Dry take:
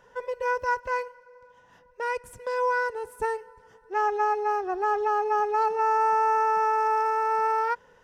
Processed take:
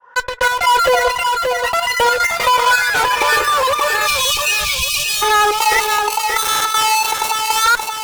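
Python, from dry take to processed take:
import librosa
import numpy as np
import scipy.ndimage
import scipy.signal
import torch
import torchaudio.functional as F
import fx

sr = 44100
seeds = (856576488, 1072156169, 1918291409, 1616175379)

p1 = fx.fade_in_head(x, sr, length_s=0.65)
p2 = fx.wah_lfo(p1, sr, hz=0.8, low_hz=610.0, high_hz=1600.0, q=3.7)
p3 = fx.fuzz(p2, sr, gain_db=53.0, gate_db=-53.0)
p4 = p2 + (p3 * librosa.db_to_amplitude(-3.0))
p5 = fx.step_gate(p4, sr, bpm=158, pattern='xxx.x..xxx.x', floor_db=-12.0, edge_ms=4.5)
p6 = fx.notch_comb(p5, sr, f0_hz=220.0)
p7 = fx.echo_pitch(p6, sr, ms=318, semitones=6, count=3, db_per_echo=-6.0)
p8 = fx.spec_erase(p7, sr, start_s=4.07, length_s=1.15, low_hz=200.0, high_hz=2200.0)
p9 = p8 + fx.echo_feedback(p8, sr, ms=577, feedback_pct=29, wet_db=-9, dry=0)
p10 = fx.env_flatten(p9, sr, amount_pct=50)
y = p10 * librosa.db_to_amplitude(4.0)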